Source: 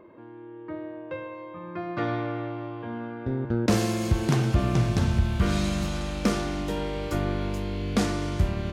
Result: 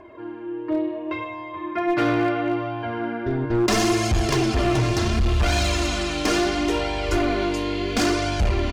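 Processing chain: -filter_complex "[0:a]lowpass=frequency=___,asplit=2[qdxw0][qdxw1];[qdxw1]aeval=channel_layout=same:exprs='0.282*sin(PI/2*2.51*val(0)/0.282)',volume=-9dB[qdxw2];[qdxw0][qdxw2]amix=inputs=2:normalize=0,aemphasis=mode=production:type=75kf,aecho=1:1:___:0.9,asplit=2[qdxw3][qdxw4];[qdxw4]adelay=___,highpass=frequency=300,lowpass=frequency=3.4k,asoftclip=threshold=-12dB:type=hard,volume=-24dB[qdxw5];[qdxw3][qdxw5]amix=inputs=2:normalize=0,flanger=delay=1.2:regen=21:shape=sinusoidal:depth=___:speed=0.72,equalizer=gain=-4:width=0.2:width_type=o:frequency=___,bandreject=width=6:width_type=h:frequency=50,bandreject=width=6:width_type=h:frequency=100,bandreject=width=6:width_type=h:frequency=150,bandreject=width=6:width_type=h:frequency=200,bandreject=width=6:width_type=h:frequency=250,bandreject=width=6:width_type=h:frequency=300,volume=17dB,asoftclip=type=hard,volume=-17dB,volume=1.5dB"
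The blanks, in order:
4.6k, 2.9, 110, 5.4, 3.6k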